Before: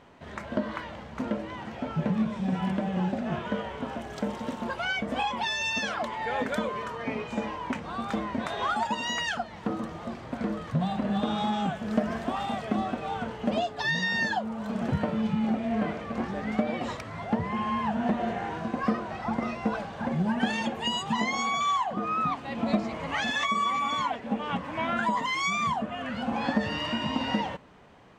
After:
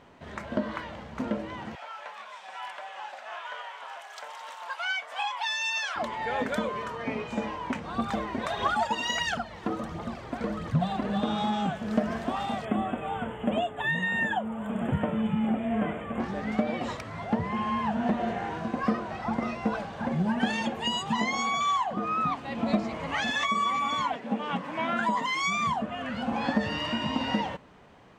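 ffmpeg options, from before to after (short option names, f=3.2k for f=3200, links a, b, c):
-filter_complex "[0:a]asettb=1/sr,asplit=3[a][b][c];[a]atrim=end=1.754[d];[b]atrim=start=1.75:end=5.96,asetpts=PTS-STARTPTS,afade=t=in:d=0.004:c=qsin,afade=t=out:st=4.206:d=0.004:c=qsin,highpass=f=800:w=0.5412,highpass=f=800:w=1.3066[e];[c]atrim=start=5.956[f];[d][e]acrossfade=d=0.004:c1=hsin:c2=qsin[g];[g][f]acrossfade=d=0.004:c1=qsin:c2=hsin,asplit=3[h][i][j];[h]afade=t=out:st=7.93:d=0.02[k];[i]aphaser=in_gain=1:out_gain=1:delay=3:decay=0.5:speed=1.5:type=triangular,afade=t=in:st=7.93:d=0.02,afade=t=out:st=11.14:d=0.02[l];[j]afade=t=in:st=11.14:d=0.02[m];[k][l][m]amix=inputs=3:normalize=0,asettb=1/sr,asplit=3[n][o][p];[n]atrim=end=12.654[q];[o]atrim=start=12.65:end=16.2,asetpts=PTS-STARTPTS,afade=t=in:d=0.004:c=qsin,afade=t=out:st=3.546:d=0.004:c=qsin,asuperstop=centerf=5000:order=12:qfactor=1.4[r];[p]atrim=start=16.196[s];[q][r]acrossfade=d=0.004:c1=hsin:c2=qsin[t];[t][s]acrossfade=d=0.004:c1=qsin:c2=hsin,asettb=1/sr,asplit=3[u][v][w];[u]atrim=end=24.164[x];[v]atrim=start=24.16:end=25.42,asetpts=PTS-STARTPTS,afade=t=in:d=0.004:c=qsin,afade=t=out:st=1.256:d=0.004:c=qsin,highpass=f=140:w=0.5412,highpass=f=140:w=1.3066[y];[w]atrim=start=25.416[z];[x][y]acrossfade=d=0.004:c1=hsin:c2=qsin[aa];[aa][z]acrossfade=d=0.004:c1=qsin:c2=hsin"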